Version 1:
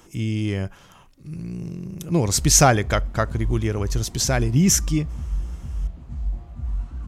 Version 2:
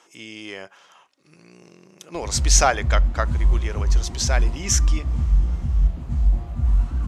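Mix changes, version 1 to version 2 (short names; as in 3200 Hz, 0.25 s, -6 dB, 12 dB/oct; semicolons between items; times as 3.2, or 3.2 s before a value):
speech: add BPF 590–7000 Hz; background +8.5 dB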